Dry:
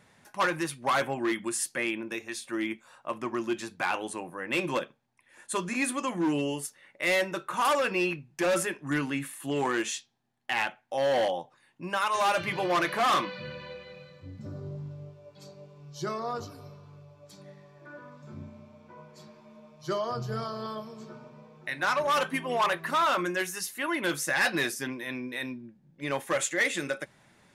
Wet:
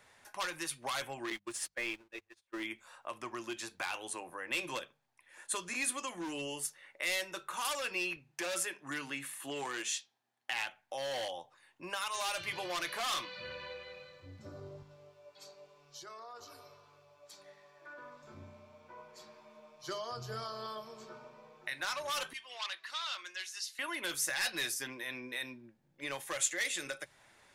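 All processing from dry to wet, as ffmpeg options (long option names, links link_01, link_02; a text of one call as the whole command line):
ffmpeg -i in.wav -filter_complex "[0:a]asettb=1/sr,asplit=3[link_01][link_02][link_03];[link_01]atrim=end=1.304[link_04];[link_02]atrim=start=1.3:end=2.63,asetpts=PTS-STARTPTS,afade=type=in:duration=0.004:curve=qsin,afade=type=out:start_time=1.326:duration=0.004:curve=qsin,aeval=exprs='val(0)+0.5*0.02*sgn(val(0))':channel_layout=same,agate=range=-45dB:threshold=-30dB:ratio=16:release=100:detection=peak,aemphasis=mode=reproduction:type=50kf[link_05];[link_03]atrim=start=2.626[link_06];[link_04][link_05]acrossfade=duration=0.004:curve1=hsin:curve2=qsin[link_07];[link_07][link_06]acrossfade=duration=0.004:curve1=qsin:curve2=hsin,asettb=1/sr,asplit=3[link_08][link_09][link_10];[link_08]atrim=end=8.164[link_11];[link_09]atrim=start=8.16:end=10.68,asetpts=PTS-STARTPTS,afade=type=in:duration=0.004:curve=qsin,afade=type=out:start_time=2.516:duration=0.004:curve=qsin,highpass=frequency=140:poles=1,highshelf=frequency=8000:gain=-3[link_12];[link_10]atrim=start=10.676[link_13];[link_11][link_12]acrossfade=duration=0.004:curve1=hsin:curve2=qsin[link_14];[link_14][link_13]acrossfade=duration=0.004:curve1=qsin:curve2=hsin,asettb=1/sr,asplit=3[link_15][link_16][link_17];[link_15]atrim=end=14.824[link_18];[link_16]atrim=start=14.82:end=17.98,asetpts=PTS-STARTPTS,afade=type=in:duration=0.004:curve=qsin,afade=type=out:start_time=3.156:duration=0.004:curve=qsin,lowshelf=frequency=350:gain=-10,acompressor=threshold=-44dB:ratio=8:attack=3.2:release=140:knee=1:detection=peak[link_19];[link_17]atrim=start=17.976[link_20];[link_18][link_19]acrossfade=duration=0.004:curve1=hsin:curve2=qsin[link_21];[link_21][link_20]acrossfade=duration=0.004:curve1=qsin:curve2=hsin,asettb=1/sr,asplit=3[link_22][link_23][link_24];[link_22]atrim=end=22.334[link_25];[link_23]atrim=start=22.33:end=23.79,asetpts=PTS-STARTPTS,afade=type=in:duration=0.004:curve=qsin,afade=type=out:start_time=1.456:duration=0.004:curve=qsin,lowpass=frequency=4300:width_type=q:width=1.8,aderivative[link_26];[link_24]atrim=start=23.786[link_27];[link_25][link_26]acrossfade=duration=0.004:curve1=hsin:curve2=qsin[link_28];[link_28][link_27]acrossfade=duration=0.004:curve1=qsin:curve2=hsin,equalizer=frequency=180:width=0.83:gain=-14,bandreject=frequency=50:width_type=h:width=6,bandreject=frequency=100:width_type=h:width=6,bandreject=frequency=150:width_type=h:width=6,bandreject=frequency=200:width_type=h:width=6,acrossover=split=170|3000[link_29][link_30][link_31];[link_30]acompressor=threshold=-41dB:ratio=3[link_32];[link_29][link_32][link_31]amix=inputs=3:normalize=0" out.wav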